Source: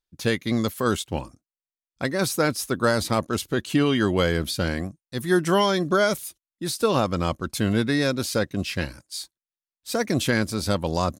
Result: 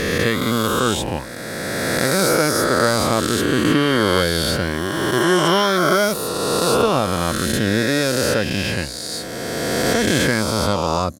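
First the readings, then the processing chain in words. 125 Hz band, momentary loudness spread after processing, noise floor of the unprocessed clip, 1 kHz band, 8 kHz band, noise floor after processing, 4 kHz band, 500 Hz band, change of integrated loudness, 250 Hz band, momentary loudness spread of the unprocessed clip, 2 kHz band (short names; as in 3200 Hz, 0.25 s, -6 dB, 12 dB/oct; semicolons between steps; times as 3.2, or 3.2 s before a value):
+4.0 dB, 8 LU, under -85 dBFS, +7.0 dB, +9.0 dB, -29 dBFS, +8.5 dB, +6.0 dB, +6.0 dB, +4.5 dB, 11 LU, +7.5 dB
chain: spectral swells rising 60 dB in 3.00 s; gain +1 dB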